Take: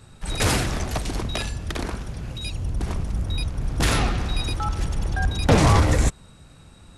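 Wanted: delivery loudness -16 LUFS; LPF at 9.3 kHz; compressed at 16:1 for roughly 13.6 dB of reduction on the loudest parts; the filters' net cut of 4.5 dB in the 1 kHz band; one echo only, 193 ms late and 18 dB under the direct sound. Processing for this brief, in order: low-pass 9.3 kHz; peaking EQ 1 kHz -6 dB; compression 16:1, threshold -26 dBFS; delay 193 ms -18 dB; trim +16.5 dB

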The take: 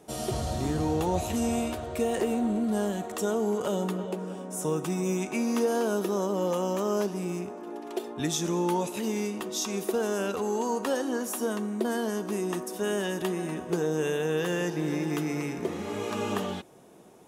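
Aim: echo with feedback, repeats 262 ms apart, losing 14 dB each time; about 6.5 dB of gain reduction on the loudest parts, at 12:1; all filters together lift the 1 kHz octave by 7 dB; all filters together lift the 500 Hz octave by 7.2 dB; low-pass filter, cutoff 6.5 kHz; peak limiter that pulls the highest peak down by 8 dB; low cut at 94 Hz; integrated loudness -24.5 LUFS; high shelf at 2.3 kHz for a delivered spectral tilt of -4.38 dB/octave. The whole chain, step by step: high-pass 94 Hz; low-pass 6.5 kHz; peaking EQ 500 Hz +7.5 dB; peaking EQ 1 kHz +7 dB; treble shelf 2.3 kHz -5.5 dB; compression 12:1, threshold -22 dBFS; peak limiter -20.5 dBFS; feedback delay 262 ms, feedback 20%, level -14 dB; trim +4.5 dB

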